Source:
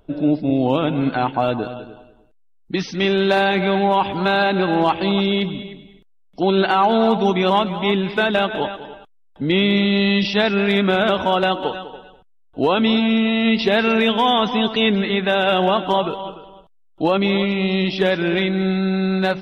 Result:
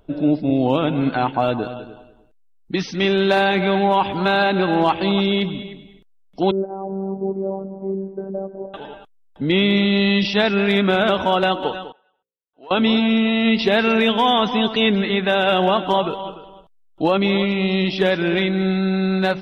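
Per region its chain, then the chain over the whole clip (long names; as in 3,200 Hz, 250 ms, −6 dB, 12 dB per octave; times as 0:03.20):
0:06.51–0:08.74: transistor ladder low-pass 620 Hz, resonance 40% + phases set to zero 193 Hz
0:11.92–0:12.71: low-pass filter 1,500 Hz + first difference + hum removal 58.65 Hz, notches 9
whole clip: no processing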